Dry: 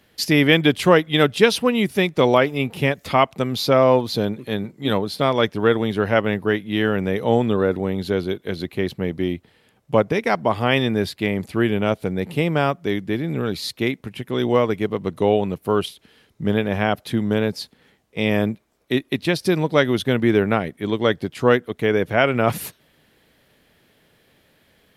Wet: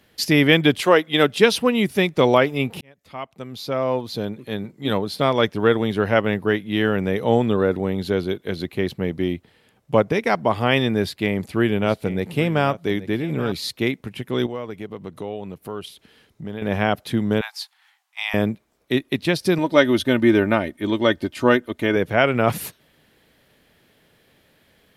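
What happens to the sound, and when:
0.8–1.43 HPF 380 Hz -> 130 Hz
2.81–5.29 fade in linear
10.99–13.52 echo 0.827 s -15 dB
14.46–16.62 compressor 2:1, threshold -36 dBFS
17.41–18.34 steep high-pass 750 Hz 72 dB/oct
19.58–21.96 comb 3.3 ms, depth 60%

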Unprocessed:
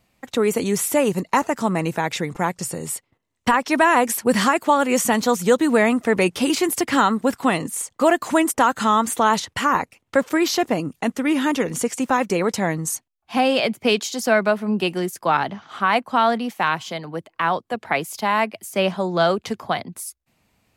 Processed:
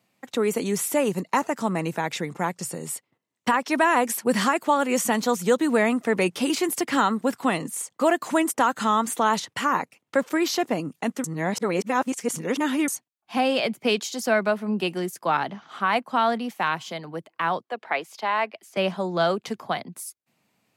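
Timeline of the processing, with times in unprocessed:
11.24–12.88 reverse
17.63–18.77 three-band isolator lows -16 dB, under 320 Hz, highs -14 dB, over 5300 Hz
whole clip: HPF 130 Hz 24 dB/oct; gain -4 dB

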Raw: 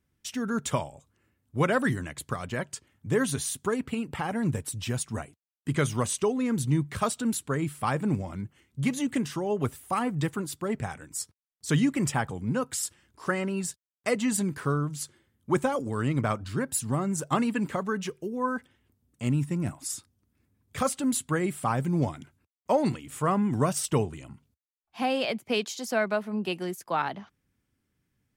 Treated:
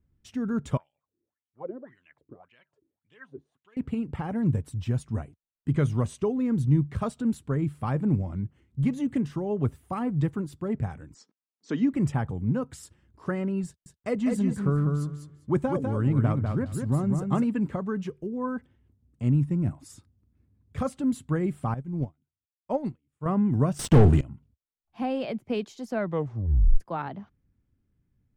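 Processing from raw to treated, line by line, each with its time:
0.77–3.77 wah 1.8 Hz 310–3100 Hz, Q 7.1
11.14–11.93 elliptic band-pass 230–6100 Hz
13.66–17.45 feedback echo 0.199 s, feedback 17%, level -5 dB
21.74–23.26 upward expander 2.5:1, over -42 dBFS
23.79–24.21 sample leveller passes 5
25.98 tape stop 0.82 s
whole clip: tilt -3.5 dB/oct; gain -5.5 dB

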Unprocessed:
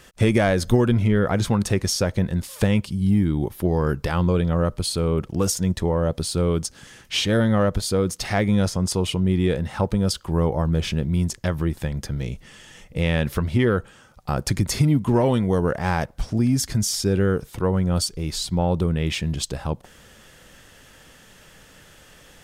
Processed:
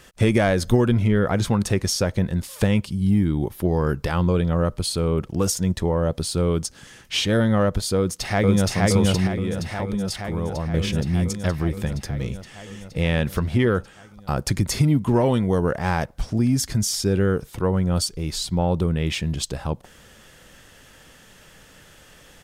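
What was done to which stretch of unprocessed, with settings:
7.96–8.68 echo throw 0.47 s, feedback 75%, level -0.5 dB
9.27–10.74 compressor 2:1, threshold -26 dBFS

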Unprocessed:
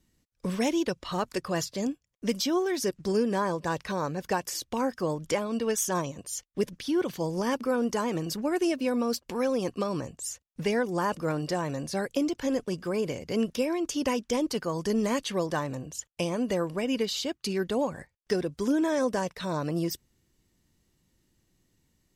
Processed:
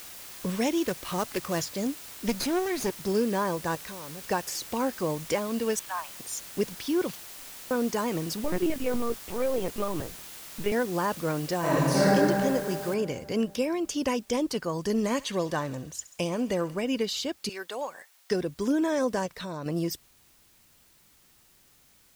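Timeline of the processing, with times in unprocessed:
0.85–1.61 sample-rate reducer 7100 Hz, jitter 20%
2.28–2.9 minimum comb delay 0.45 ms
3.75–4.24 compressor 5:1, threshold -39 dBFS
5.79–6.2 elliptic band-pass 780–2900 Hz
7.15–7.71 inverse Chebyshev band-stop 120–4100 Hz, stop band 70 dB
8.44–10.72 LPC vocoder at 8 kHz pitch kept
11.59–12.13 reverb throw, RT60 2.5 s, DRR -10 dB
12.94 noise floor step -44 dB -61 dB
14.8–16.8 thinning echo 67 ms, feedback 80%, high-pass 1200 Hz, level -17 dB
17.49–18.31 HPF 710 Hz
19.26–19.66 compressor 3:1, threshold -33 dBFS

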